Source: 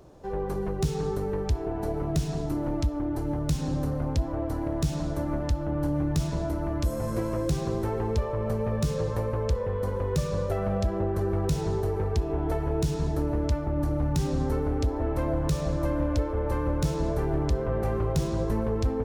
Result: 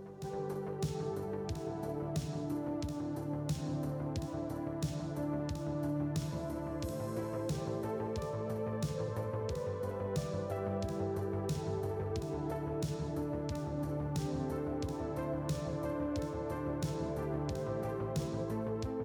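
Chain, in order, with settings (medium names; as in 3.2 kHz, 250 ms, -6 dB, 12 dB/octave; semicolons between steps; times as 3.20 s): high-pass 89 Hz 24 dB/octave; on a send: reverse echo 606 ms -9 dB; on the sum: trim -8.5 dB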